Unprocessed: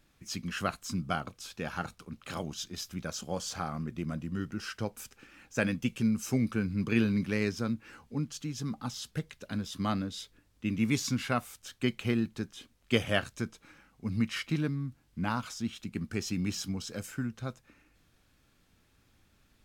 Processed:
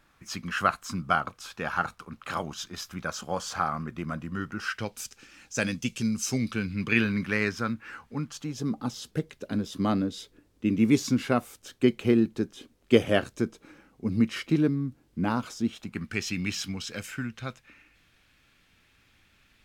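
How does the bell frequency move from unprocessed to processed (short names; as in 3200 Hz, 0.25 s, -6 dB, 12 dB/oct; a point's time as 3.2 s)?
bell +11 dB 1.7 oct
4.64 s 1200 Hz
5.04 s 5900 Hz
6.17 s 5900 Hz
7.19 s 1500 Hz
8.22 s 1500 Hz
8.69 s 370 Hz
15.65 s 370 Hz
16.11 s 2400 Hz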